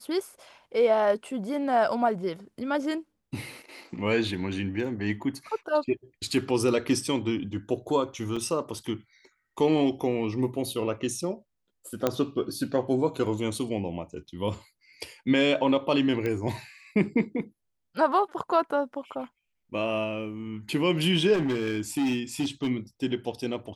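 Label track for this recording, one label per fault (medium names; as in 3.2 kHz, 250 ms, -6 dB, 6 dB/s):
8.360000	8.360000	dropout 4.8 ms
12.070000	12.070000	pop -10 dBFS
16.260000	16.260000	pop -18 dBFS
21.330000	22.700000	clipped -22.5 dBFS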